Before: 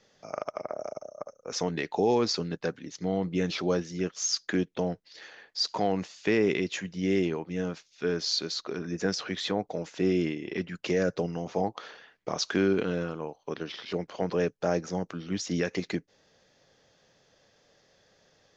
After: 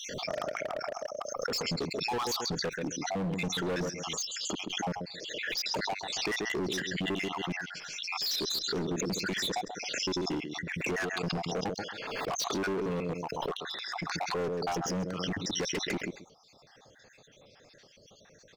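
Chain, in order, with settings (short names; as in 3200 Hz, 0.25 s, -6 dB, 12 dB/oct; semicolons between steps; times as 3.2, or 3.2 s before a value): random spectral dropouts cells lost 65%; feedback echo 0.134 s, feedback 18%, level -14.5 dB; in parallel at +0.5 dB: negative-ratio compressor -33 dBFS, ratio -0.5; on the sum: overloaded stage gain 29.5 dB; backwards sustainer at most 29 dB/s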